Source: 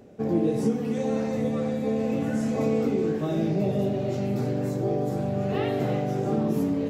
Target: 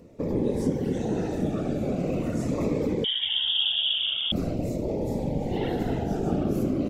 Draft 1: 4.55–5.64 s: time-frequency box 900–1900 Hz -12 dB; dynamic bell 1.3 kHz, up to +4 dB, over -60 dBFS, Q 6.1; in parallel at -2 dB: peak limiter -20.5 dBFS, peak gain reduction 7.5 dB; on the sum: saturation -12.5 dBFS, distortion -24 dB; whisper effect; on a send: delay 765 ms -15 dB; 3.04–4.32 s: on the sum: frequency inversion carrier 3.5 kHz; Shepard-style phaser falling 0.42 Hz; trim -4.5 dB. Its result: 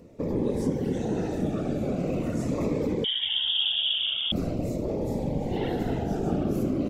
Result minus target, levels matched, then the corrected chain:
saturation: distortion +16 dB
4.55–5.64 s: time-frequency box 900–1900 Hz -12 dB; dynamic bell 1.3 kHz, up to +4 dB, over -60 dBFS, Q 6.1; in parallel at -2 dB: peak limiter -20.5 dBFS, peak gain reduction 7.5 dB; on the sum: saturation -3.5 dBFS, distortion -40 dB; whisper effect; on a send: delay 765 ms -15 dB; 3.04–4.32 s: on the sum: frequency inversion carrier 3.5 kHz; Shepard-style phaser falling 0.42 Hz; trim -4.5 dB

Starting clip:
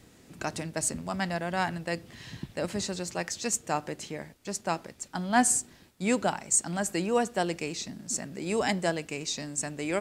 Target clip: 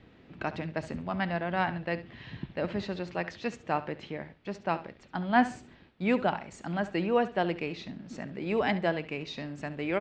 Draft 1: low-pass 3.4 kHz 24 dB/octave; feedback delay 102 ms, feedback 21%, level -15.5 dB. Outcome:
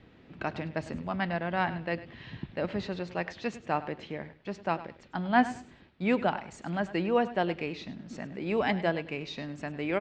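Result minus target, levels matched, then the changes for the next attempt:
echo 33 ms late
change: feedback delay 69 ms, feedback 21%, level -15.5 dB

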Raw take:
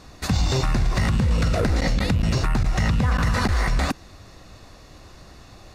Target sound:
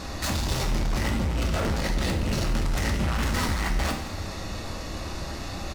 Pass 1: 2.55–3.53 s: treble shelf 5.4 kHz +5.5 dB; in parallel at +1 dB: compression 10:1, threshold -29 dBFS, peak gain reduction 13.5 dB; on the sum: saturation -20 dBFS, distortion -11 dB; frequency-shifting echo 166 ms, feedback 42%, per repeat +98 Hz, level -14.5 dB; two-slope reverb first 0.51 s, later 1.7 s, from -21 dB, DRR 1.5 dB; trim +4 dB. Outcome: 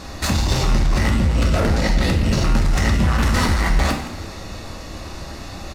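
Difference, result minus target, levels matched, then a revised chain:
saturation: distortion -6 dB
2.55–3.53 s: treble shelf 5.4 kHz +5.5 dB; in parallel at +1 dB: compression 10:1, threshold -29 dBFS, peak gain reduction 13.5 dB; on the sum: saturation -30.5 dBFS, distortion -5 dB; frequency-shifting echo 166 ms, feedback 42%, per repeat +98 Hz, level -14.5 dB; two-slope reverb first 0.51 s, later 1.7 s, from -21 dB, DRR 1.5 dB; trim +4 dB

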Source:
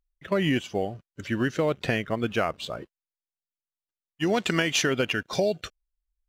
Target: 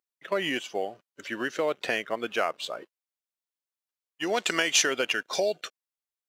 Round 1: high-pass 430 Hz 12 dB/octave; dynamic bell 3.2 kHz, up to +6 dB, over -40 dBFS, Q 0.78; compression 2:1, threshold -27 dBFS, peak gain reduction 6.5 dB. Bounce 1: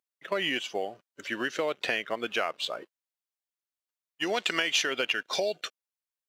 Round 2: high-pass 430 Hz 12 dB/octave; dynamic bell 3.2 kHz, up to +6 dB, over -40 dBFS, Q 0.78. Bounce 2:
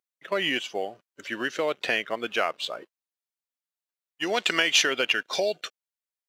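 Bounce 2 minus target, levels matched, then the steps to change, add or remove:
8 kHz band -5.0 dB
change: dynamic bell 7.4 kHz, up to +6 dB, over -40 dBFS, Q 0.78

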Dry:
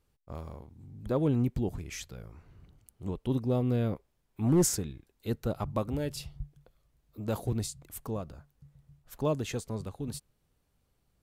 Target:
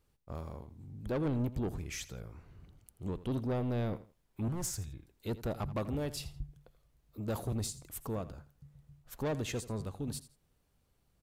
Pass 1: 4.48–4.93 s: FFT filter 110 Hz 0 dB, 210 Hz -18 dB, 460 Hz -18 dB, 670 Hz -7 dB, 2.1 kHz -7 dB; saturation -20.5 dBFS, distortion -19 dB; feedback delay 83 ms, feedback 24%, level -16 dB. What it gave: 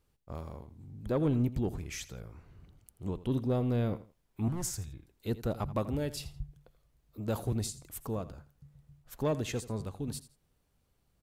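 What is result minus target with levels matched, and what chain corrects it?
saturation: distortion -10 dB
4.48–4.93 s: FFT filter 110 Hz 0 dB, 210 Hz -18 dB, 460 Hz -18 dB, 670 Hz -7 dB, 2.1 kHz -7 dB; saturation -29 dBFS, distortion -9 dB; feedback delay 83 ms, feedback 24%, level -16 dB

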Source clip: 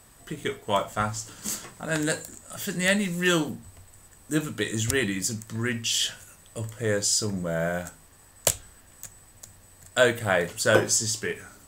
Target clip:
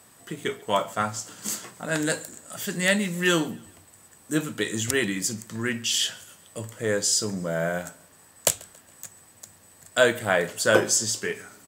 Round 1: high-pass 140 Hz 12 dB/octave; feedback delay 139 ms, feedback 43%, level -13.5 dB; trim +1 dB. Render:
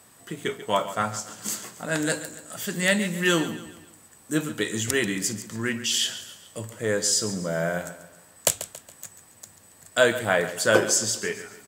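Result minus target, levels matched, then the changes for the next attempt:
echo-to-direct +11.5 dB
change: feedback delay 139 ms, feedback 43%, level -25 dB

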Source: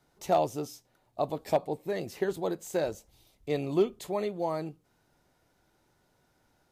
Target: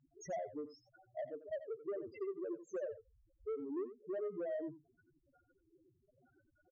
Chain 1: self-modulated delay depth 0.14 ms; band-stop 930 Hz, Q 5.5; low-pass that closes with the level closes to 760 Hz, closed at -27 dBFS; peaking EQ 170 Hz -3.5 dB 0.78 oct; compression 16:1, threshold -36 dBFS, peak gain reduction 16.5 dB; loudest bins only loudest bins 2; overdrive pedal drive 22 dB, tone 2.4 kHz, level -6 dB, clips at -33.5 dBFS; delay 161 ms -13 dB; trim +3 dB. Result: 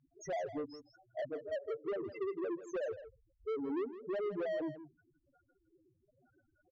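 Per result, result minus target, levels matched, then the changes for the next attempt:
echo 73 ms late; compression: peak gain reduction -8.5 dB
change: delay 88 ms -13 dB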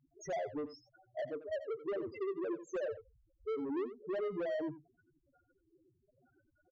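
compression: peak gain reduction -8.5 dB
change: compression 16:1, threshold -45 dBFS, peak gain reduction 25 dB

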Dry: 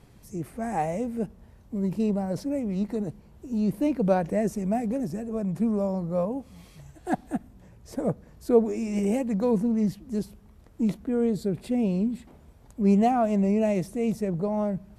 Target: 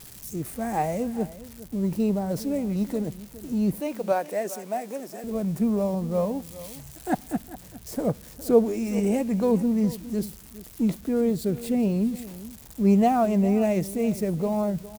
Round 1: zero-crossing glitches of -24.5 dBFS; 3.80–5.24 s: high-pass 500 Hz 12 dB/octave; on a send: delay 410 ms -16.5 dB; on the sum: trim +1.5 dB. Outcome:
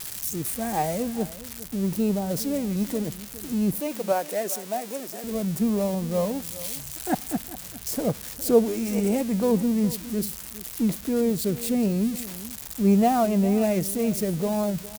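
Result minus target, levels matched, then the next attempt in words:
zero-crossing glitches: distortion +10 dB
zero-crossing glitches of -35 dBFS; 3.80–5.24 s: high-pass 500 Hz 12 dB/octave; on a send: delay 410 ms -16.5 dB; on the sum: trim +1.5 dB

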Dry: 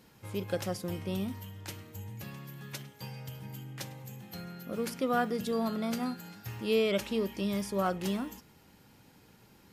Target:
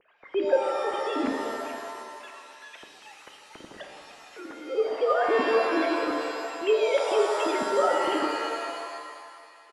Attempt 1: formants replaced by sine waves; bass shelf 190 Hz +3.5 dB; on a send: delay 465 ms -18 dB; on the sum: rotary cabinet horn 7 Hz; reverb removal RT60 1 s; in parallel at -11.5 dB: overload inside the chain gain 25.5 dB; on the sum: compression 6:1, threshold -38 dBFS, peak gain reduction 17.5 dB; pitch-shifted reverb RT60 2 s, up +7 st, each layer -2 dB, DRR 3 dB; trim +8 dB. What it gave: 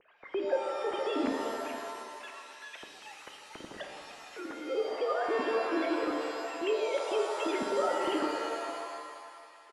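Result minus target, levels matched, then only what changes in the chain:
compression: peak gain reduction +8.5 dB
change: compression 6:1, threshold -28 dBFS, peak gain reduction 9.5 dB

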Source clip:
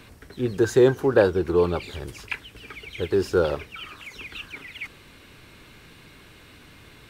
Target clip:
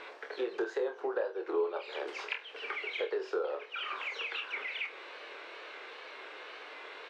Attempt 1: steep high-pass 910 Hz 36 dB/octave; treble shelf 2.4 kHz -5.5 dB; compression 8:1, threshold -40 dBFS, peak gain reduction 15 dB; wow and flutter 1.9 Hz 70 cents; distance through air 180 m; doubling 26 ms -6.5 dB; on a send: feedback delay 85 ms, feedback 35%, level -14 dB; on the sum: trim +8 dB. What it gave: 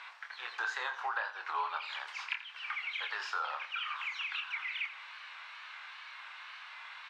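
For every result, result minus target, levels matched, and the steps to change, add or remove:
500 Hz band -19.5 dB; echo 38 ms late
change: steep high-pass 430 Hz 36 dB/octave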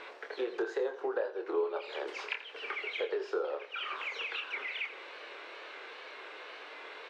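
echo 38 ms late
change: feedback delay 47 ms, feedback 35%, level -14 dB

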